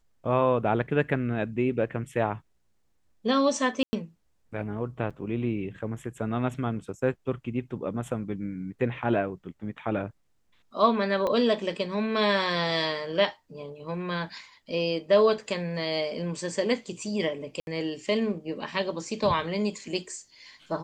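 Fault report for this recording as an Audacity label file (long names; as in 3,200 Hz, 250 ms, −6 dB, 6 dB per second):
3.830000	3.930000	drop-out 100 ms
5.100000	5.110000	drop-out 6.6 ms
11.270000	11.270000	click −17 dBFS
17.600000	17.670000	drop-out 71 ms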